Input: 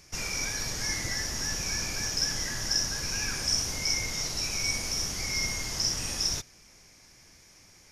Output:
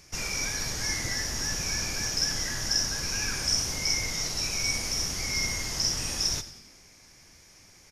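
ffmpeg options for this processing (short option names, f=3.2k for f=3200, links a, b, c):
-filter_complex "[0:a]asplit=6[a][b][c][d][e][f];[b]adelay=90,afreqshift=-87,volume=-14.5dB[g];[c]adelay=180,afreqshift=-174,volume=-20.2dB[h];[d]adelay=270,afreqshift=-261,volume=-25.9dB[i];[e]adelay=360,afreqshift=-348,volume=-31.5dB[j];[f]adelay=450,afreqshift=-435,volume=-37.2dB[k];[a][g][h][i][j][k]amix=inputs=6:normalize=0,volume=1dB"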